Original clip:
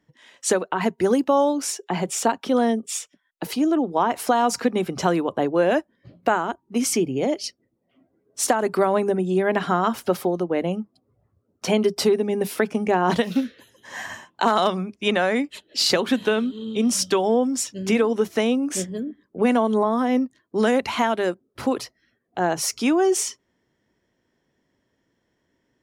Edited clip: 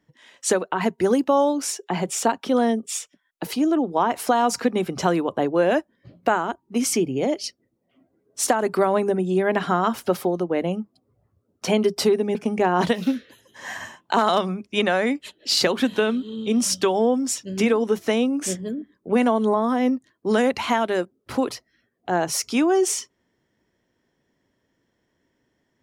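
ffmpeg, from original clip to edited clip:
-filter_complex "[0:a]asplit=2[a][b];[a]atrim=end=12.352[c];[b]atrim=start=12.638[d];[c][d]acrossfade=d=0.004:c1=hsin:c2=hsin"

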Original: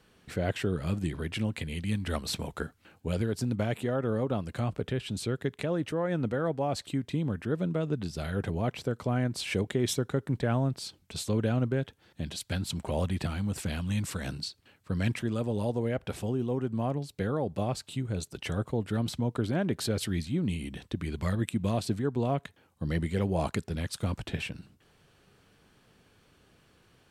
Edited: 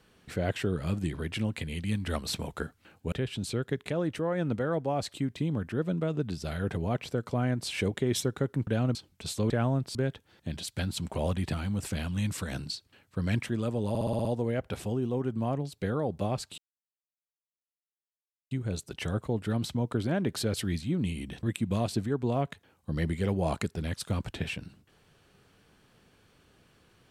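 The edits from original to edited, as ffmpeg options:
-filter_complex "[0:a]asplit=14[a][b][c][d][e][f][g][h][i][j][k][l][m][n];[a]atrim=end=3.122[o];[b]atrim=start=4.848:end=10.402[p];[c]atrim=start=11.398:end=11.682[q];[d]atrim=start=10.848:end=11.402[r];[e]atrim=start=10.398:end=10.852[s];[f]atrim=start=11.678:end=15.682[t];[g]atrim=start=15.618:end=15.682[u];[h]atrim=start=15.618:end=15.682[v];[i]atrim=start=15.618:end=15.682[w];[j]atrim=start=15.618:end=15.682[x];[k]atrim=start=15.618:end=15.682[y];[l]atrim=start=15.618:end=17.95,asetpts=PTS-STARTPTS,afade=t=out:st=2.328:d=0.004:c=hsin,apad=pad_dur=1.93[z];[m]atrim=start=17.95:end=20.872,asetpts=PTS-STARTPTS,afade=t=in:d=0.004:c=hsin[aa];[n]atrim=start=21.358[ab];[o][p]acrossfade=d=0.004:c1=hsin:c2=hsin[ac];[ac][q]acrossfade=d=0.004:c1=hsin:c2=hsin[ad];[ad][r]acrossfade=d=0.004:c1=hsin:c2=hsin[ae];[ae][s]acrossfade=d=0.004:c1=hsin:c2=hsin[af];[af][t]acrossfade=d=0.004:c1=hsin:c2=hsin[ag];[ag][u]acrossfade=d=0.004:c1=hsin:c2=hsin[ah];[ah][v]acrossfade=d=0.004:c1=hsin:c2=hsin[ai];[ai][w]acrossfade=d=0.004:c1=hsin:c2=hsin[aj];[aj][x]acrossfade=d=0.004:c1=hsin:c2=hsin[ak];[ak][y]acrossfade=d=0.004:c1=hsin:c2=hsin[al];[z][aa]concat=n=2:v=0:a=1[am];[al][am]acrossfade=d=0.004:c1=hsin:c2=hsin[an];[an][ab]acrossfade=d=0.004:c1=hsin:c2=hsin"

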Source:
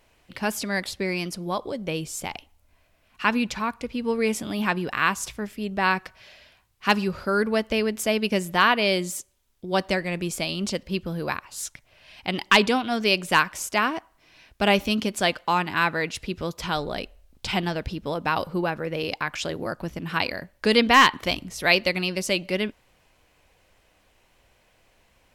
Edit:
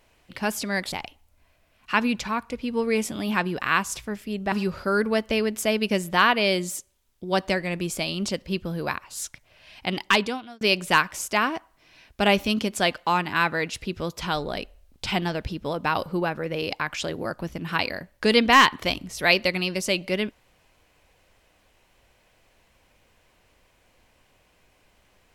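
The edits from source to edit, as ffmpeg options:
-filter_complex "[0:a]asplit=4[a][b][c][d];[a]atrim=end=0.922[e];[b]atrim=start=2.228:end=5.832[f];[c]atrim=start=6.928:end=13.02,asetpts=PTS-STARTPTS,afade=t=out:st=5.422:d=0.67[g];[d]atrim=start=13.02,asetpts=PTS-STARTPTS,afade=t=in:d=0.004:c=hsin[h];[e][f]acrossfade=d=0.004:c1=hsin:c2=hsin[i];[g][h]concat=n=2:v=0:a=1[j];[i][j]acrossfade=d=0.004:c1=hsin:c2=hsin"

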